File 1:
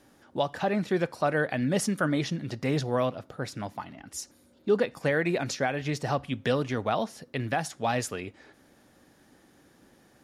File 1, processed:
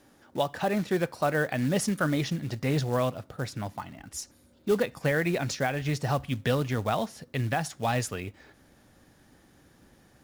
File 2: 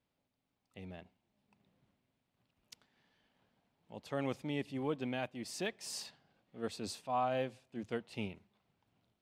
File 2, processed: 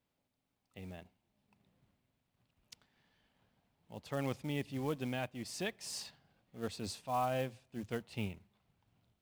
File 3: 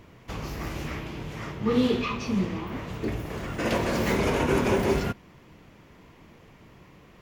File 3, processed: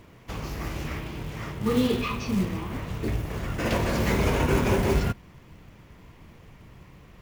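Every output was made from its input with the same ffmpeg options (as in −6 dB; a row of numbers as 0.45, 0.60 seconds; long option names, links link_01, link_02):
-af "acrusher=bits=5:mode=log:mix=0:aa=0.000001,asubboost=boost=2:cutoff=170"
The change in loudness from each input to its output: 0.0, −0.5, +0.5 LU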